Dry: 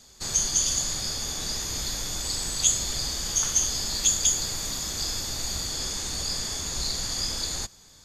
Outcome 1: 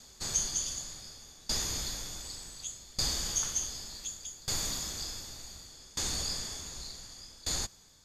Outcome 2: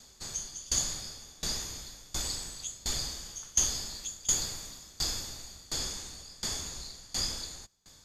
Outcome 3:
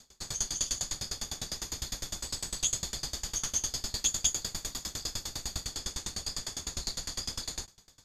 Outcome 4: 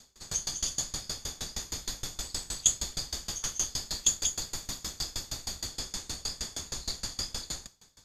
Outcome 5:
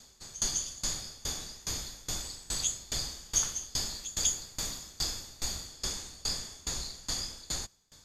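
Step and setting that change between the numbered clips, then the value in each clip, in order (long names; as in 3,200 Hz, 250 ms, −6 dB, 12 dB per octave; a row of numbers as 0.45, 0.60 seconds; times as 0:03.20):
tremolo with a ramp in dB, speed: 0.67, 1.4, 9.9, 6.4, 2.4 Hertz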